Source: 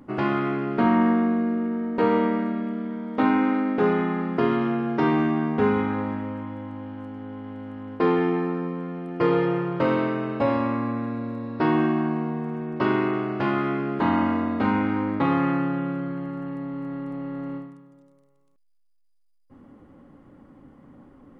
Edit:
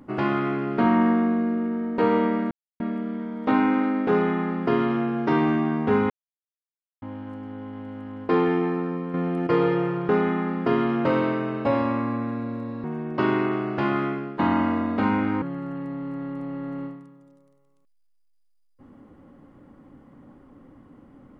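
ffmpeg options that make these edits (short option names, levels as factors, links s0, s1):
-filter_complex "[0:a]asplit=11[s0][s1][s2][s3][s4][s5][s6][s7][s8][s9][s10];[s0]atrim=end=2.51,asetpts=PTS-STARTPTS,afade=t=out:st=2.506:d=0.004:c=hsin,apad=pad_dur=0.29[s11];[s1]atrim=start=2.51:end=5.81,asetpts=PTS-STARTPTS,afade=t=in:d=0.004:c=hsin,afade=t=out:st=3.296:d=0.004:c=hsin[s12];[s2]atrim=start=5.81:end=6.73,asetpts=PTS-STARTPTS,volume=0[s13];[s3]atrim=start=6.73:end=8.852,asetpts=PTS-STARTPTS,afade=t=in:d=0.004:c=hsin[s14];[s4]atrim=start=8.848:end=9.182,asetpts=PTS-STARTPTS,volume=2.37[s15];[s5]atrim=start=9.178:end=9.802[s16];[s6]atrim=start=3.808:end=4.772[s17];[s7]atrim=start=9.798:end=11.592[s18];[s8]atrim=start=12.458:end=14.01,asetpts=PTS-STARTPTS,afade=t=out:st=1.182:d=0.37:silence=0.281838[s19];[s9]atrim=start=14.01:end=15.042,asetpts=PTS-STARTPTS,afade=t=in:d=0.004:c=hsin:silence=0.281838[s20];[s10]atrim=start=16.128[s21];[s11][s12][s13][s14]concat=n=4:v=0:a=1[s22];[s22][s15]acrossfade=d=0.004:c1=hsin:c2=hsin[s23];[s23][s16]acrossfade=d=0.004:c1=hsin:c2=hsin[s24];[s24][s17]acrossfade=d=0.004:c1=hsin:c2=hsin[s25];[s25][s18]acrossfade=d=0.004:c1=hsin:c2=hsin[s26];[s19][s20]concat=n=2:v=0:a=1[s27];[s26][s27]acrossfade=d=0.004:c1=hsin:c2=hsin[s28];[s28][s21]acrossfade=d=0.004:c1=hsin:c2=hsin"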